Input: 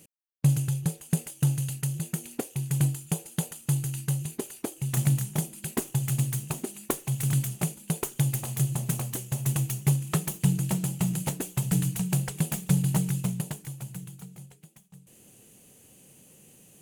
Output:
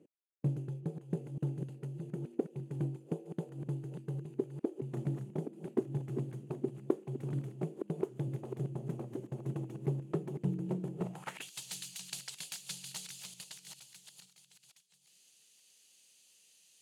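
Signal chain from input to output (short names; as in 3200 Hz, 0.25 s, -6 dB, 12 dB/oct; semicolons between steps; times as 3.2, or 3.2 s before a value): reverse delay 0.46 s, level -8 dB; band-pass sweep 360 Hz -> 4400 Hz, 10.99–11.51; gain +2.5 dB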